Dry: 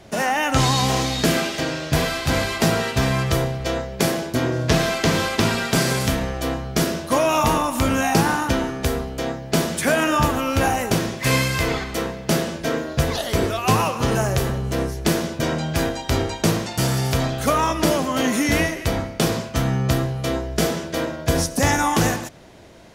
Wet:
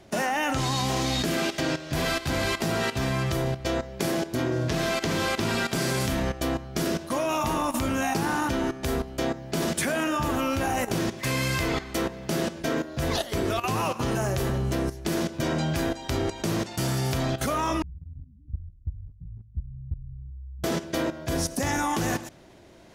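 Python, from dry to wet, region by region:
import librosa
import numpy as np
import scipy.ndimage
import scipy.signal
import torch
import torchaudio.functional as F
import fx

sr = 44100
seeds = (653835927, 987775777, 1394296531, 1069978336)

y = fx.chain(x, sr, fx.cheby2_lowpass(hz=500.0, order=4, stop_db=80),
    fx.band_squash(depth_pct=70), at=(17.82, 20.64))
y = fx.peak_eq(y, sr, hz=350.0, db=4.0, octaves=0.59)
y = fx.notch(y, sr, hz=460.0, q=12.0)
y = fx.level_steps(y, sr, step_db=13)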